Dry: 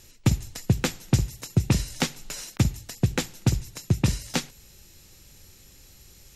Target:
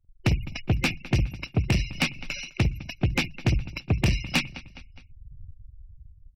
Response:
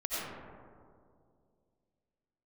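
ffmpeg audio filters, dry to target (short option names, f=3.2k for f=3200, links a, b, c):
-filter_complex "[0:a]asplit=2[a][b];[b]adynamicsmooth=sensitivity=1.5:basefreq=6.9k,volume=-1dB[c];[a][c]amix=inputs=2:normalize=0,superequalizer=7b=0.447:12b=3.16:15b=0.316,afftfilt=real='re*gte(hypot(re,im),0.0282)':imag='im*gte(hypot(re,im),0.0282)':win_size=1024:overlap=0.75,dynaudnorm=f=140:g=11:m=8dB,agate=range=-13dB:threshold=-49dB:ratio=16:detection=peak,aecho=1:1:207|414|621:0.075|0.036|0.0173,asoftclip=type=tanh:threshold=-16.5dB"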